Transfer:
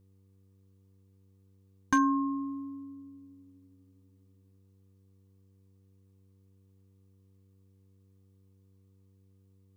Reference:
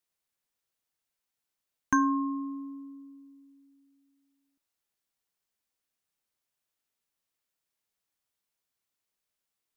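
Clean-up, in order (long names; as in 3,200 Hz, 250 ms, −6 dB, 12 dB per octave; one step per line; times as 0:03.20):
clipped peaks rebuilt −17 dBFS
hum removal 96.4 Hz, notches 5
broadband denoise 23 dB, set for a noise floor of −63 dBFS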